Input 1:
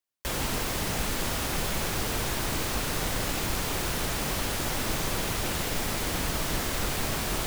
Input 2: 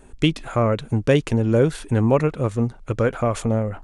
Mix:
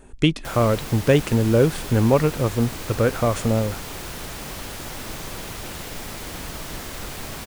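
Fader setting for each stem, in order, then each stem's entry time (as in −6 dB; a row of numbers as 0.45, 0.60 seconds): −4.0, +0.5 decibels; 0.20, 0.00 seconds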